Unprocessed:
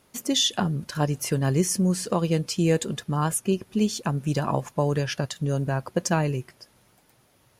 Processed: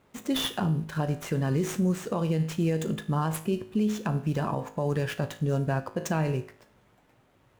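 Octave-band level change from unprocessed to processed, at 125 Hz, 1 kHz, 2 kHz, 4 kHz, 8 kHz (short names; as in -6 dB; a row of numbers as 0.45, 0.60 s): -2.5, -4.0, -3.0, -8.0, -11.5 dB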